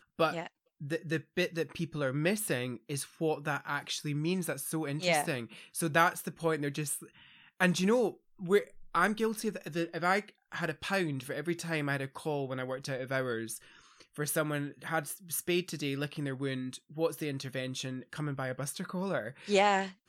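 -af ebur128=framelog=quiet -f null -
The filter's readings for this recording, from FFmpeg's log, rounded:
Integrated loudness:
  I:         -33.0 LUFS
  Threshold: -43.3 LUFS
Loudness range:
  LRA:         4.6 LU
  Threshold: -53.4 LUFS
  LRA low:   -35.7 LUFS
  LRA high:  -31.0 LUFS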